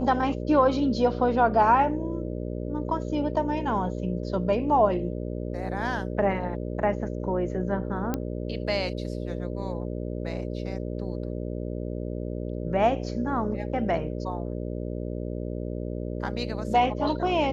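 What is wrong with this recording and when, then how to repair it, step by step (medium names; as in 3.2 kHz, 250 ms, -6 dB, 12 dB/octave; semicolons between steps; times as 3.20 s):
buzz 60 Hz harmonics 10 -32 dBFS
8.14 s: pop -14 dBFS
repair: de-click; de-hum 60 Hz, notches 10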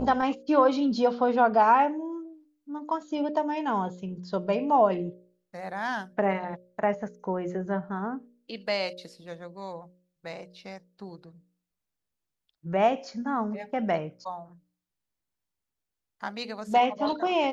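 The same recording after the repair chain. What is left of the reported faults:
nothing left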